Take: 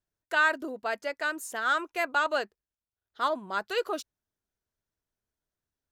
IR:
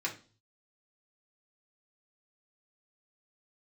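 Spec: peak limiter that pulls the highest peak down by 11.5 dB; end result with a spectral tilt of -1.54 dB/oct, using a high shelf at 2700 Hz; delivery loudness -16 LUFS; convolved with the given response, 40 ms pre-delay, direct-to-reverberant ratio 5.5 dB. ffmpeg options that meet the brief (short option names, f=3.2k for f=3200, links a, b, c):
-filter_complex "[0:a]highshelf=f=2.7k:g=3,alimiter=level_in=1dB:limit=-24dB:level=0:latency=1,volume=-1dB,asplit=2[a][b];[1:a]atrim=start_sample=2205,adelay=40[c];[b][c]afir=irnorm=-1:irlink=0,volume=-10dB[d];[a][d]amix=inputs=2:normalize=0,volume=18.5dB"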